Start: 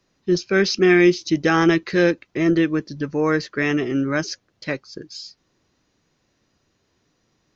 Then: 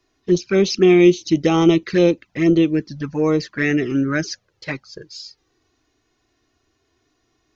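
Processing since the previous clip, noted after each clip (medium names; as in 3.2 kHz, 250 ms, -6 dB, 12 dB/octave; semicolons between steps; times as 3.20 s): touch-sensitive flanger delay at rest 2.8 ms, full sweep at -15 dBFS; trim +3.5 dB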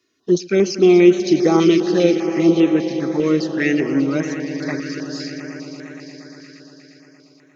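high-pass 190 Hz 12 dB/octave; echo with a slow build-up 117 ms, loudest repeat 5, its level -15.5 dB; step-sequenced notch 5 Hz 800–4800 Hz; trim +1.5 dB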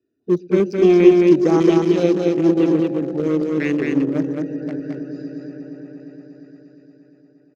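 local Wiener filter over 41 samples; dynamic bell 4.1 kHz, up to -3 dB, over -40 dBFS, Q 0.71; delay 217 ms -3 dB; trim -1 dB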